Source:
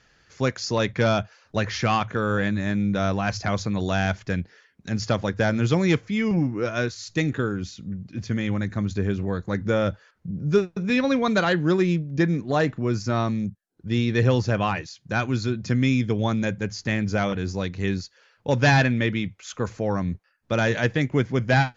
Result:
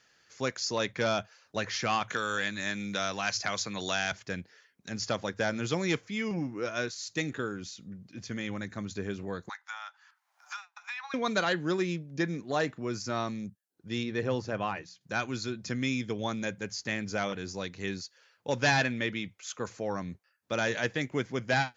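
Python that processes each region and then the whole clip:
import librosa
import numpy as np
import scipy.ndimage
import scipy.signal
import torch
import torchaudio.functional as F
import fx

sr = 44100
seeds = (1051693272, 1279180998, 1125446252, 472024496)

y = fx.chain(x, sr, fx.tilt_shelf(db=-5.5, hz=1100.0),
    fx.band_squash(depth_pct=70), at=(2.1, 4.12))
y = fx.chain(y, sr, fx.steep_highpass(hz=790.0, slope=72),
    fx.high_shelf(hz=2100.0, db=-9.5),
    fx.band_squash(depth_pct=100), at=(9.49, 11.14))
y = fx.chain(y, sr, fx.high_shelf(hz=2500.0, db=-10.0),
    fx.hum_notches(base_hz=60, count=3), at=(14.03, 15.01))
y = fx.highpass(y, sr, hz=300.0, slope=6)
y = fx.high_shelf(y, sr, hz=5300.0, db=8.5)
y = y * 10.0 ** (-6.0 / 20.0)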